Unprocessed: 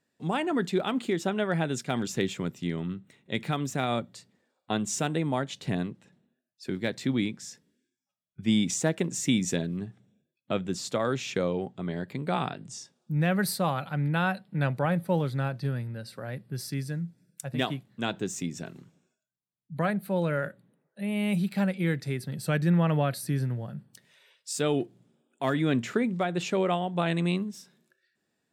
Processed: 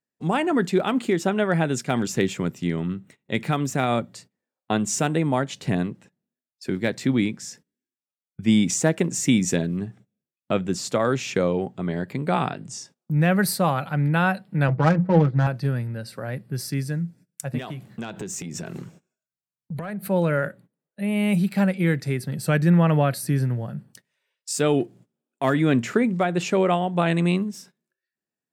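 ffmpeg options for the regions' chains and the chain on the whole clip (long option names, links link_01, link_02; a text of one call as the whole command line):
ffmpeg -i in.wav -filter_complex "[0:a]asettb=1/sr,asplit=3[link_01][link_02][link_03];[link_01]atrim=end=14.684[link_04];[link_02]atrim=start=14.68:end=15.47,asetpts=PTS-STARTPTS,afade=type=in:duration=0.004:curve=qsin,afade=type=out:start_time=0.786:duration=0.004:curve=qsin,bandreject=frequency=60:width_type=h:width=6,bandreject=frequency=120:width_type=h:width=6,bandreject=frequency=180:width_type=h:width=6,bandreject=frequency=240:width_type=h:width=6,aecho=1:1:6.2:0.81,atrim=end_sample=34839,adynamicsmooth=sensitivity=2.5:basefreq=730[link_05];[link_03]atrim=start=15.466[link_06];[link_04][link_05]acrossfade=duration=0.004:curve1=hsin:curve2=qsin[link_07];[link_07][link_06]acrossfade=duration=0.004:curve1=qsin:curve2=hsin,asettb=1/sr,asplit=3[link_08][link_09][link_10];[link_08]atrim=end=17.584[link_11];[link_09]atrim=start=17.58:end=20.08,asetpts=PTS-STARTPTS,afade=type=in:duration=0.004:curve=qsin,afade=type=out:start_time=2.496:duration=0.004:curve=qsin,acompressor=threshold=-42dB:ratio=10:attack=3.2:release=140:knee=1:detection=peak,bandreject=frequency=270:width=6.6,aeval=exprs='0.0422*sin(PI/2*1.78*val(0)/0.0422)':channel_layout=same[link_12];[link_10]atrim=start=20.076[link_13];[link_11][link_12]acrossfade=duration=0.004:curve1=hsin:curve2=qsin[link_14];[link_14][link_13]acrossfade=duration=0.004:curve1=qsin:curve2=hsin,agate=range=-20dB:threshold=-53dB:ratio=16:detection=peak,equalizer=frequency=3600:width=2.9:gain=-5,volume=6dB" out.wav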